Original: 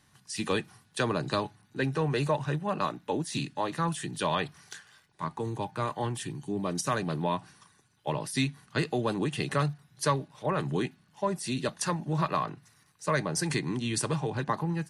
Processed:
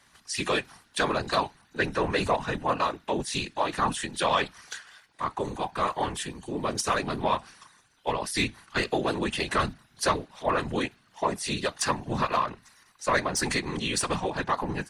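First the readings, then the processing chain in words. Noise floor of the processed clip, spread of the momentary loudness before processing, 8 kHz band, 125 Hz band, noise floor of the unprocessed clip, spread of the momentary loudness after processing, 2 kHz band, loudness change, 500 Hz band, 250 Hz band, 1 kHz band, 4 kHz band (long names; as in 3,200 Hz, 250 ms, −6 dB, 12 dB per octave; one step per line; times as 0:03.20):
−63 dBFS, 8 LU, +3.5 dB, −5.0 dB, −65 dBFS, 7 LU, +5.5 dB, +2.5 dB, +2.5 dB, −0.5 dB, +5.0 dB, +5.5 dB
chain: mid-hump overdrive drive 12 dB, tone 6,300 Hz, clips at −11.5 dBFS
random phases in short frames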